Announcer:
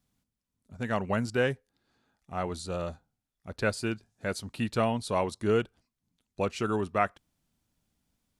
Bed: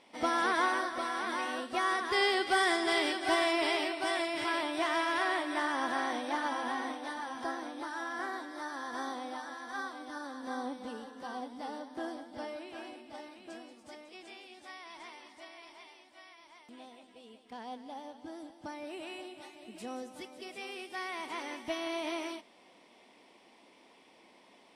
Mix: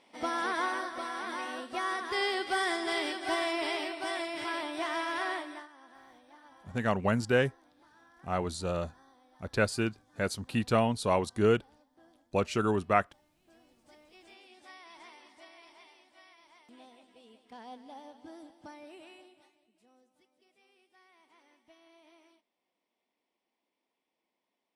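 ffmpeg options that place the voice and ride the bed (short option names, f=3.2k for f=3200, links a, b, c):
-filter_complex "[0:a]adelay=5950,volume=1dB[a];[1:a]volume=17dB,afade=t=out:st=5.31:d=0.37:silence=0.0944061,afade=t=in:st=13.34:d=1.33:silence=0.105925,afade=t=out:st=18.4:d=1.29:silence=0.0841395[b];[a][b]amix=inputs=2:normalize=0"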